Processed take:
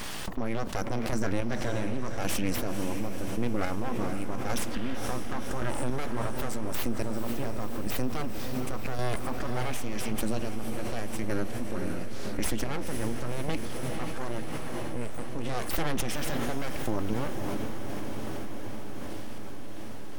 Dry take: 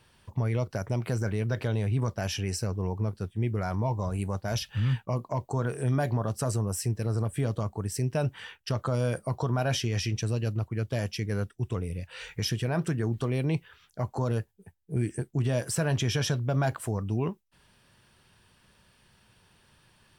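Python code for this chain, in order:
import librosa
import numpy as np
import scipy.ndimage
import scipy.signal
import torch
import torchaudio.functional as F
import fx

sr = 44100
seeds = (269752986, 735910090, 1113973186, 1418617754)

y = fx.low_shelf(x, sr, hz=170.0, db=-9.0, at=(13.49, 15.49))
y = np.abs(y)
y = fx.chopper(y, sr, hz=0.89, depth_pct=60, duty_pct=25)
y = fx.echo_diffused(y, sr, ms=513, feedback_pct=66, wet_db=-10.0)
y = fx.env_flatten(y, sr, amount_pct=70)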